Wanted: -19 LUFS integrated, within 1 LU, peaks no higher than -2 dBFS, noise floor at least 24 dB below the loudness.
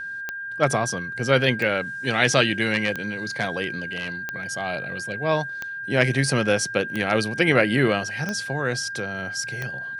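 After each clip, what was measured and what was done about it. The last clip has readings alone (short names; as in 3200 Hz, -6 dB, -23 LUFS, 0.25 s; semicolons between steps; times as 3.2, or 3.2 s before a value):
clicks 8; steady tone 1600 Hz; tone level -30 dBFS; loudness -23.5 LUFS; peak -2.0 dBFS; loudness target -19.0 LUFS
-> de-click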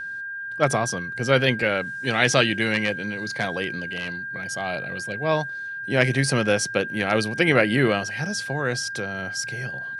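clicks 0; steady tone 1600 Hz; tone level -30 dBFS
-> notch 1600 Hz, Q 30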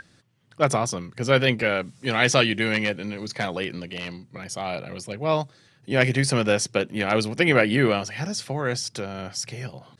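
steady tone none; loudness -24.0 LUFS; peak -2.5 dBFS; loudness target -19.0 LUFS
-> gain +5 dB; limiter -2 dBFS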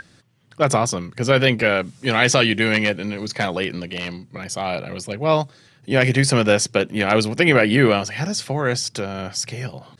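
loudness -19.5 LUFS; peak -2.0 dBFS; noise floor -54 dBFS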